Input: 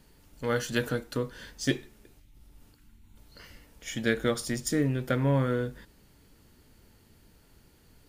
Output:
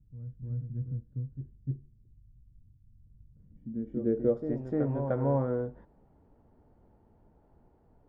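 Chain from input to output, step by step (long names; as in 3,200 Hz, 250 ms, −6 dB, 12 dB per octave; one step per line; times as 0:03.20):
backwards echo 301 ms −7 dB
low-pass filter sweep 120 Hz → 780 Hz, 0:03.24–0:04.66
level −4.5 dB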